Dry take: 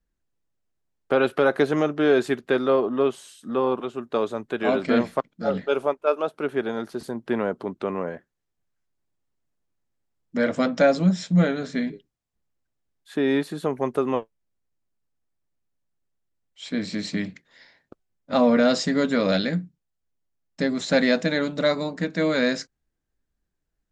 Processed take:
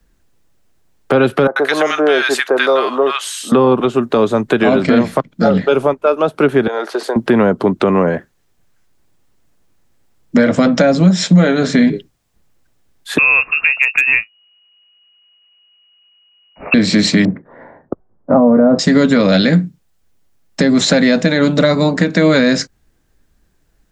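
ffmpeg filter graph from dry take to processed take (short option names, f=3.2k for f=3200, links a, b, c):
-filter_complex "[0:a]asettb=1/sr,asplit=3[a][b][c];[a]atrim=end=1.474[d];[b]atrim=start=1.47:end=3.52,asetpts=PTS-STARTPTS,afade=t=in:d=0.004:c=qsin,afade=t=out:st=2.046:d=0.004:c=qsin,highpass=700,acrossover=split=1100[e][f];[f]adelay=90[g];[e][g]amix=inputs=2:normalize=0,atrim=end_sample=90405[h];[c]atrim=start=3.516[i];[d][h]acrossfade=d=0.004:c1=hsin:c2=qsin[j];[j][i]acrossfade=d=0.004:c1=qsin:c2=hsin,asettb=1/sr,asplit=3[k][l][m];[k]atrim=end=6.674[n];[l]atrim=start=6.67:end=7.16,asetpts=PTS-STARTPTS,afade=t=in:d=0.004:c=qsin,afade=t=out:st=0.486:d=0.004:c=qsin,highpass=f=430:w=0.5412,highpass=f=430:w=1.3066,aemphasis=mode=reproduction:type=50kf,acompressor=threshold=-33dB:ratio=4:attack=3.2:release=140:knee=1:detection=peak[o];[m]atrim=start=7.156[p];[n][o]acrossfade=d=0.004:c1=hsin:c2=qsin[q];[q][p]acrossfade=d=0.004:c1=qsin:c2=hsin,asettb=1/sr,asplit=3[r][s][t];[r]atrim=end=13.184[u];[s]atrim=start=13.18:end=16.74,asetpts=PTS-STARTPTS,afade=t=in:d=0.004:c=qsin,afade=t=out:st=3.556:d=0.004:c=qsin,lowpass=f=2.5k:t=q:w=0.5098,lowpass=f=2.5k:t=q:w=0.6013,lowpass=f=2.5k:t=q:w=0.9,lowpass=f=2.5k:t=q:w=2.563,afreqshift=-2900,asoftclip=type=hard:threshold=-13.5dB[v];[t]atrim=start=16.736[w];[u][v]acrossfade=d=0.004:c1=hsin:c2=qsin[x];[x][w]acrossfade=d=0.004:c1=qsin:c2=hsin,asettb=1/sr,asplit=3[y][z][aa];[y]atrim=end=17.254[ab];[z]atrim=start=17.25:end=18.79,asetpts=PTS-STARTPTS,afade=t=in:d=0.004:c=qsin,afade=t=out:st=1.536:d=0.004:c=qsin,lowpass=f=1.2k:w=0.5412,lowpass=f=1.2k:w=1.3066,equalizer=f=450:w=0.38:g=5[ac];[aa]atrim=start=18.786[ad];[ab][ac]acrossfade=d=0.004:c1=hsin:c2=qsin[ae];[ae][ad]acrossfade=d=0.004:c1=qsin:c2=hsin,acrossover=split=100|200[af][ag][ah];[af]acompressor=threshold=-56dB:ratio=4[ai];[ag]acompressor=threshold=-36dB:ratio=4[aj];[ah]acompressor=threshold=-32dB:ratio=4[ak];[ai][aj][ak]amix=inputs=3:normalize=0,alimiter=level_in=22dB:limit=-1dB:release=50:level=0:latency=1,volume=-1dB"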